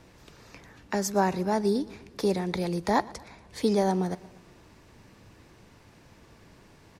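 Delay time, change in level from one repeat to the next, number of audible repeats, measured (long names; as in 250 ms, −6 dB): 118 ms, −4.5 dB, 3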